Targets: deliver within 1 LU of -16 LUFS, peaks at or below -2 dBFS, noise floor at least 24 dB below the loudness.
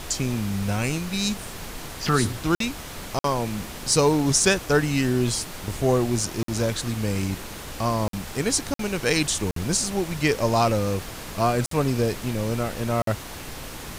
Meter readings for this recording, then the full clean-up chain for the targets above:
dropouts 8; longest dropout 53 ms; noise floor -37 dBFS; noise floor target -49 dBFS; loudness -24.5 LUFS; peak -6.0 dBFS; loudness target -16.0 LUFS
-> interpolate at 2.55/3.19/6.43/8.08/8.74/9.51/11.66/13.02, 53 ms; noise print and reduce 12 dB; gain +8.5 dB; limiter -2 dBFS

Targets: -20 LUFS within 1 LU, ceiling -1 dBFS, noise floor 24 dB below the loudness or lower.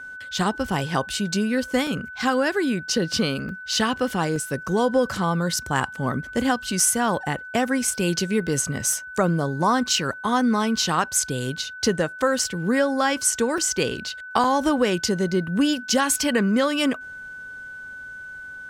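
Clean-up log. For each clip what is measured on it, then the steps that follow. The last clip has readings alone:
dropouts 8; longest dropout 2.4 ms; steady tone 1500 Hz; tone level -35 dBFS; loudness -23.0 LUFS; peak -5.0 dBFS; loudness target -20.0 LUFS
-> interpolate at 1.87/3.49/4.36/6.8/8.93/12.39/13.58/14.44, 2.4 ms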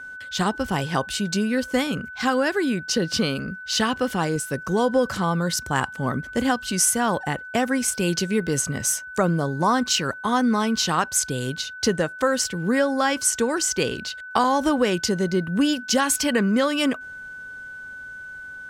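dropouts 0; steady tone 1500 Hz; tone level -35 dBFS
-> notch 1500 Hz, Q 30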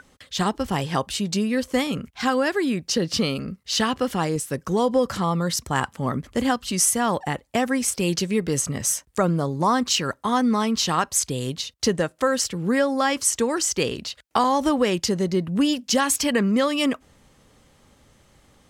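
steady tone none; loudness -23.0 LUFS; peak -5.5 dBFS; loudness target -20.0 LUFS
-> gain +3 dB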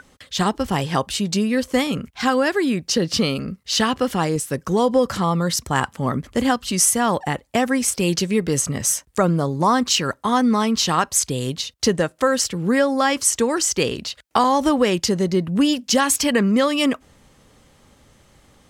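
loudness -20.0 LUFS; peak -2.5 dBFS; noise floor -57 dBFS

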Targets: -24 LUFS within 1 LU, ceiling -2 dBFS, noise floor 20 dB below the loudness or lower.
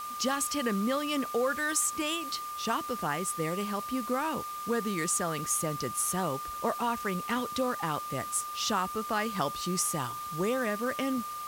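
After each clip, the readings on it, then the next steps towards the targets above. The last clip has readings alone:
steady tone 1200 Hz; tone level -36 dBFS; noise floor -39 dBFS; noise floor target -51 dBFS; loudness -31.0 LUFS; peak -16.0 dBFS; loudness target -24.0 LUFS
-> notch 1200 Hz, Q 30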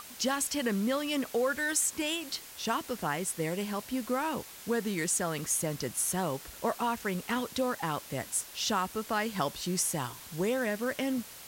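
steady tone none; noise floor -48 dBFS; noise floor target -52 dBFS
-> denoiser 6 dB, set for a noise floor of -48 dBFS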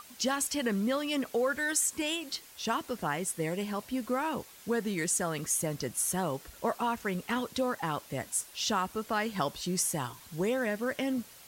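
noise floor -53 dBFS; loudness -32.0 LUFS; peak -16.0 dBFS; loudness target -24.0 LUFS
-> gain +8 dB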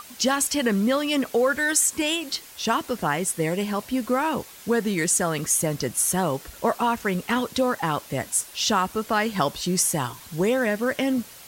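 loudness -24.0 LUFS; peak -8.0 dBFS; noise floor -45 dBFS

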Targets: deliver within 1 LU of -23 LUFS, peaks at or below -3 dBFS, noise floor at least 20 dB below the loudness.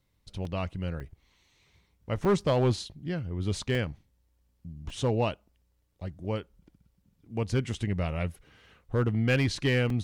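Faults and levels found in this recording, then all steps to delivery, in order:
clipped 0.4%; flat tops at -17.5 dBFS; dropouts 7; longest dropout 2.5 ms; loudness -30.0 LUFS; peak -17.5 dBFS; loudness target -23.0 LUFS
-> clip repair -17.5 dBFS; interpolate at 0.45/1/2.25/3.75/4.9/7.74/9.9, 2.5 ms; gain +7 dB

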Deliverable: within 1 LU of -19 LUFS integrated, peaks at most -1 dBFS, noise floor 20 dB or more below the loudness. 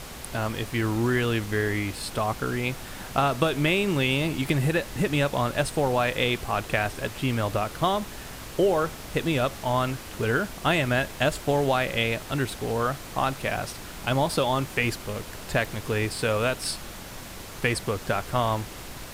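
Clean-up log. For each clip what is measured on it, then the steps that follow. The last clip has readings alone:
noise floor -40 dBFS; noise floor target -47 dBFS; loudness -26.5 LUFS; peak -7.0 dBFS; loudness target -19.0 LUFS
-> noise print and reduce 7 dB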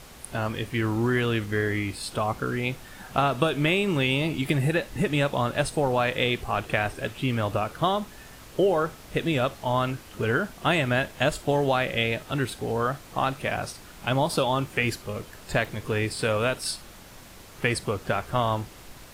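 noise floor -47 dBFS; loudness -26.5 LUFS; peak -7.0 dBFS; loudness target -19.0 LUFS
-> gain +7.5 dB; limiter -1 dBFS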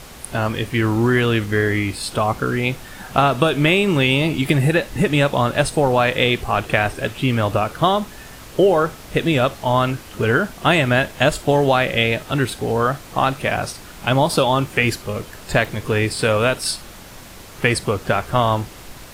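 loudness -19.0 LUFS; peak -1.0 dBFS; noise floor -39 dBFS

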